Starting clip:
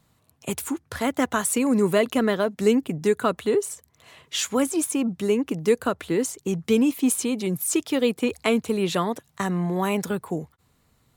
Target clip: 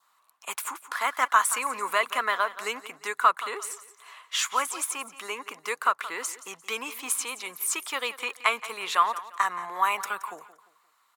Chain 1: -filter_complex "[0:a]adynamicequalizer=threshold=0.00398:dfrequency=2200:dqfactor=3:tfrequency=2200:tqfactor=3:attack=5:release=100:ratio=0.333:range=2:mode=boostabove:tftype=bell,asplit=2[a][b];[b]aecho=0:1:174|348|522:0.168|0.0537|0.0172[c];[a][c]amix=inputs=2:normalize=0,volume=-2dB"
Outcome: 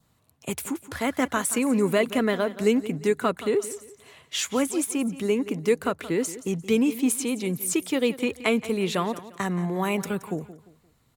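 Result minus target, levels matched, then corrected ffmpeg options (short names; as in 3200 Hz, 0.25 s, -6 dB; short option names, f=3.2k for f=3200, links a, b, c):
1000 Hz band -9.5 dB
-filter_complex "[0:a]adynamicequalizer=threshold=0.00398:dfrequency=2200:dqfactor=3:tfrequency=2200:tqfactor=3:attack=5:release=100:ratio=0.333:range=2:mode=boostabove:tftype=bell,highpass=f=1.1k:t=q:w=3.6,asplit=2[a][b];[b]aecho=0:1:174|348|522:0.168|0.0537|0.0172[c];[a][c]amix=inputs=2:normalize=0,volume=-2dB"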